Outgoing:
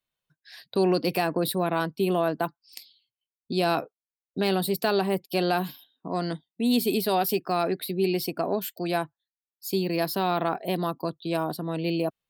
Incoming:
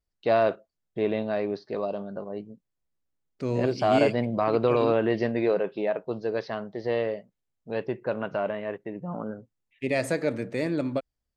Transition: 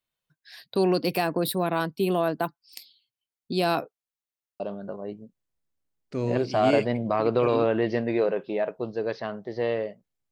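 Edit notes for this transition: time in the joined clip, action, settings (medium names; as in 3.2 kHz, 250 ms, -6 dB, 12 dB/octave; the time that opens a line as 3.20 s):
outgoing
4.25 s: stutter in place 0.07 s, 5 plays
4.60 s: go over to incoming from 1.88 s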